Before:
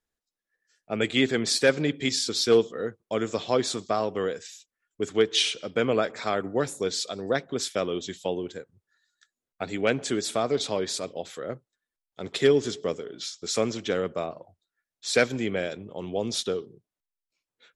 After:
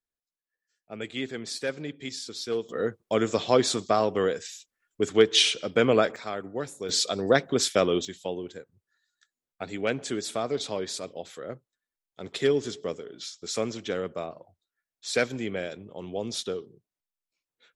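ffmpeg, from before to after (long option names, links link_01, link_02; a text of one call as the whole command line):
ffmpeg -i in.wav -af "asetnsamples=nb_out_samples=441:pad=0,asendcmd='2.69 volume volume 3dB;6.16 volume volume -6.5dB;6.89 volume volume 5dB;8.05 volume volume -3.5dB',volume=-10dB" out.wav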